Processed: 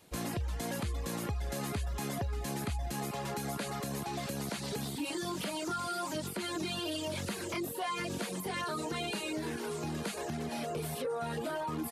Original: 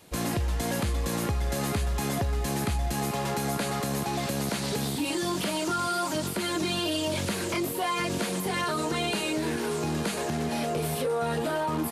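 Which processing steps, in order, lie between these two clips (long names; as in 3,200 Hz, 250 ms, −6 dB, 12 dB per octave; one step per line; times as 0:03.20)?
reverb reduction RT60 0.54 s
level −6.5 dB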